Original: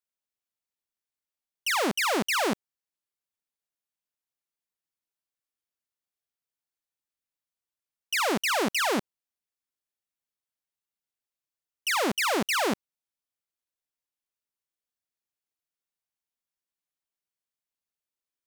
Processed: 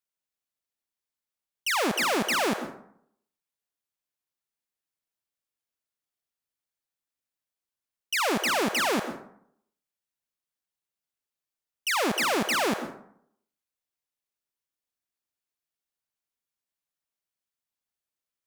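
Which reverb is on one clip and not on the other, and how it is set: plate-style reverb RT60 0.66 s, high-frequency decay 0.5×, pre-delay 0.1 s, DRR 9 dB

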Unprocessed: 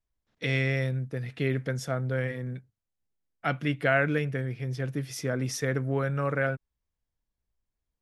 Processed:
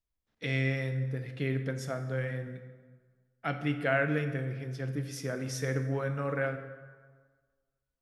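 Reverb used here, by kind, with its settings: plate-style reverb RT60 1.5 s, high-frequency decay 0.65×, DRR 7 dB; gain -5 dB

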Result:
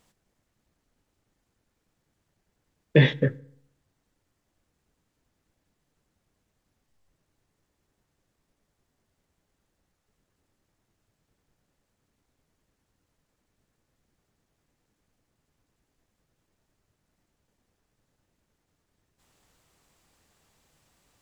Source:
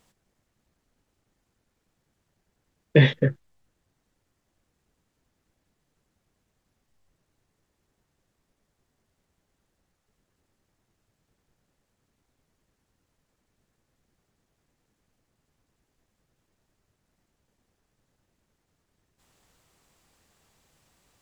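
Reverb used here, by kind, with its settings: FDN reverb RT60 0.66 s, low-frequency decay 1.1×, high-frequency decay 0.7×, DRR 18.5 dB; gain -1 dB

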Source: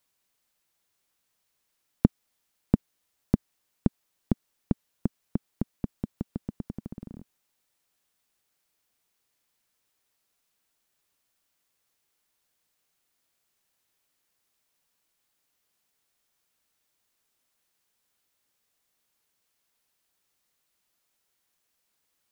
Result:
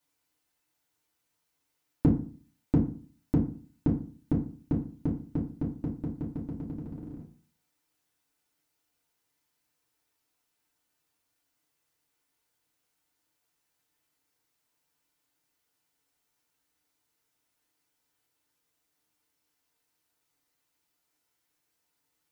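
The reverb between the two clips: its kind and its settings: FDN reverb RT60 0.42 s, low-frequency decay 1.25×, high-frequency decay 0.6×, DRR -5.5 dB; gain -7.5 dB

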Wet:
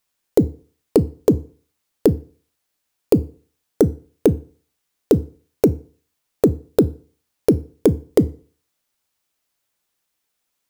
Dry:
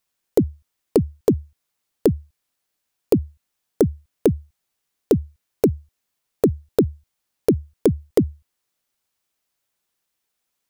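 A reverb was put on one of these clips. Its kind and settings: FDN reverb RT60 0.43 s, low-frequency decay 0.95×, high-frequency decay 0.85×, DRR 15 dB; gain +2 dB

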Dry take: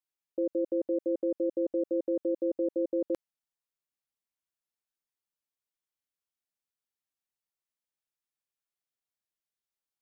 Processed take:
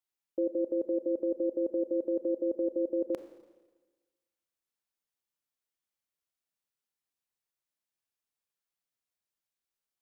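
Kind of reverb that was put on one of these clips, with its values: Schroeder reverb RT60 1.3 s, combs from 28 ms, DRR 9.5 dB

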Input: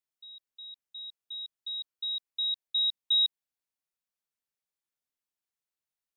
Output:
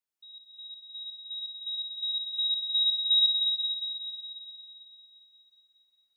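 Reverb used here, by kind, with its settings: digital reverb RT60 4.9 s, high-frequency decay 0.75×, pre-delay 45 ms, DRR -4 dB; gain -2 dB

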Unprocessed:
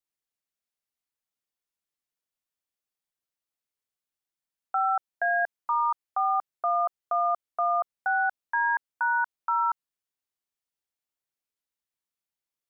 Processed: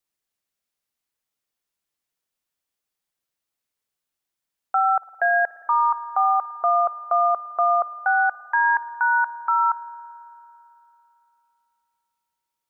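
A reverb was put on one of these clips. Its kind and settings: spring tank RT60 3.1 s, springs 55 ms, chirp 45 ms, DRR 16 dB; gain +6 dB

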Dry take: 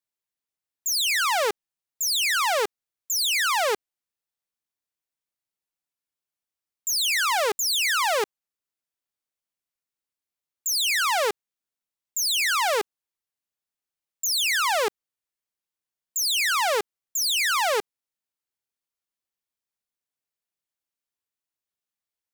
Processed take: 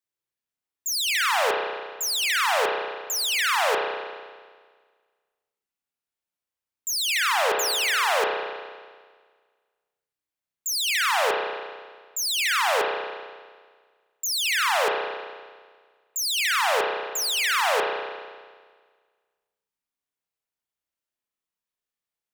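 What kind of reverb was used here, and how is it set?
spring tank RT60 1.6 s, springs 32 ms, chirp 60 ms, DRR -0.5 dB; gain -2 dB

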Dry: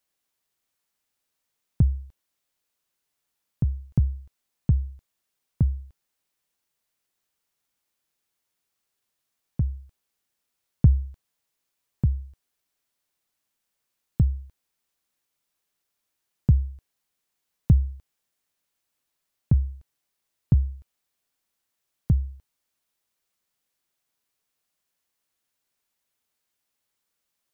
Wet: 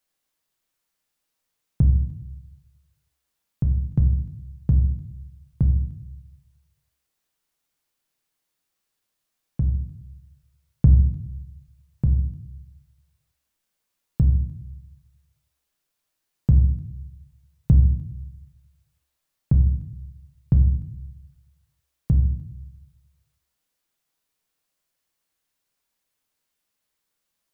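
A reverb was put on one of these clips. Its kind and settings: shoebox room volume 140 m³, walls mixed, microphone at 0.55 m

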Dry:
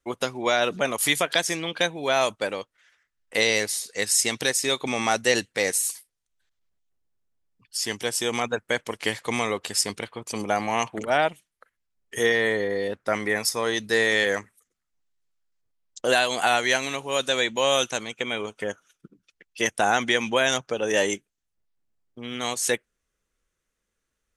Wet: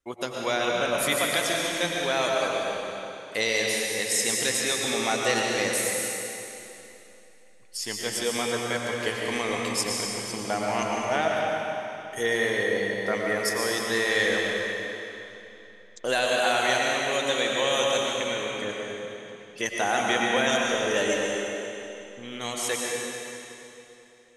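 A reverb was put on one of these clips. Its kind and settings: digital reverb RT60 3.1 s, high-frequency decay 0.95×, pre-delay 75 ms, DRR -2 dB; gain -5 dB

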